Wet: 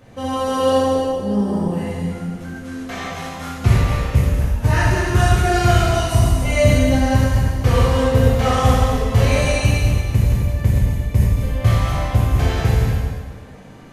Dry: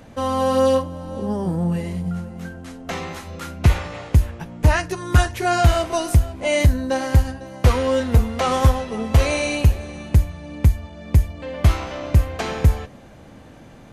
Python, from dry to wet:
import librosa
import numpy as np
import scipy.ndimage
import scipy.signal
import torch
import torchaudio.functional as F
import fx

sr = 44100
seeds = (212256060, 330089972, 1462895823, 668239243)

y = fx.reverse_delay_fb(x, sr, ms=119, feedback_pct=49, wet_db=-3.5)
y = fx.rev_gated(y, sr, seeds[0], gate_ms=420, shape='falling', drr_db=-7.5)
y = y * 10.0 ** (-7.0 / 20.0)